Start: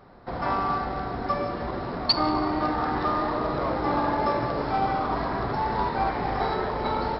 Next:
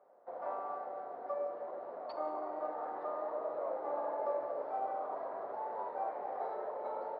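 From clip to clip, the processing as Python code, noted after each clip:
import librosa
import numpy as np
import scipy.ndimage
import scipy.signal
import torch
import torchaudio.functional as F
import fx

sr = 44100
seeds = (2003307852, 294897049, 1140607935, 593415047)

y = fx.ladder_bandpass(x, sr, hz=640.0, resonance_pct=60)
y = y * librosa.db_to_amplitude(-3.0)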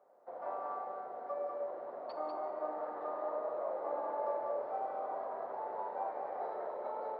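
y = x + 10.0 ** (-4.5 / 20.0) * np.pad(x, (int(195 * sr / 1000.0), 0))[:len(x)]
y = y * librosa.db_to_amplitude(-1.5)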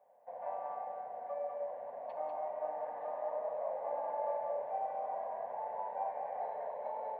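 y = fx.fixed_phaser(x, sr, hz=1300.0, stages=6)
y = y * librosa.db_to_amplitude(1.5)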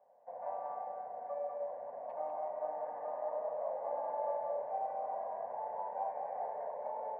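y = scipy.signal.sosfilt(scipy.signal.butter(2, 1700.0, 'lowpass', fs=sr, output='sos'), x)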